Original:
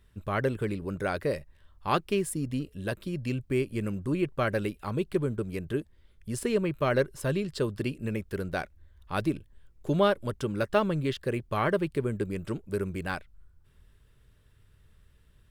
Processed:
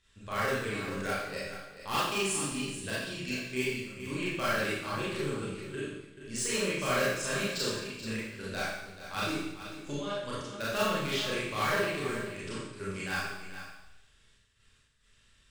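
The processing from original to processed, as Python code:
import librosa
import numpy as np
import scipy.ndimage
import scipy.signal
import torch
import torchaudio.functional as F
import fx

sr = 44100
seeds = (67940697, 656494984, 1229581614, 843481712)

p1 = scipy.signal.sosfilt(scipy.signal.cheby1(3, 1.0, 7500.0, 'lowpass', fs=sr, output='sos'), x)
p2 = fx.tilt_shelf(p1, sr, db=-9.5, hz=1400.0)
p3 = 10.0 ** (-16.0 / 20.0) * np.tanh(p2 / 10.0 ** (-16.0 / 20.0))
p4 = fx.step_gate(p3, sr, bpm=68, pattern='xxxxx.x.xx', floor_db=-12.0, edge_ms=4.5)
p5 = (np.mod(10.0 ** (23.0 / 20.0) * p4 + 1.0, 2.0) - 1.0) / 10.0 ** (23.0 / 20.0)
p6 = p4 + (p5 * 10.0 ** (-6.0 / 20.0))
p7 = p6 + 10.0 ** (-11.5 / 20.0) * np.pad(p6, (int(433 * sr / 1000.0), 0))[:len(p6)]
p8 = fx.rev_schroeder(p7, sr, rt60_s=0.87, comb_ms=28, drr_db=-8.5)
y = p8 * 10.0 ** (-9.0 / 20.0)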